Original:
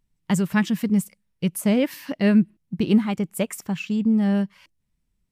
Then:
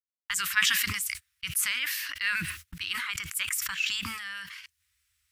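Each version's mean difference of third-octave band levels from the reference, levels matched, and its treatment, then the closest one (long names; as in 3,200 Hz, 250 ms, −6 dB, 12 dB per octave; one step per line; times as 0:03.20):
15.5 dB: high-pass filter 99 Hz 24 dB per octave
noise gate −41 dBFS, range −30 dB
inverse Chebyshev band-stop filter 130–760 Hz, stop band 40 dB
level that may fall only so fast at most 29 dB per second
level +3 dB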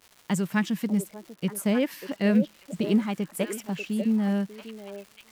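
4.0 dB: high-pass filter 160 Hz
surface crackle 390 per second −37 dBFS
on a send: echo through a band-pass that steps 592 ms, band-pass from 470 Hz, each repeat 1.4 octaves, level −4.5 dB
on the sum: level −3.5 dB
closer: second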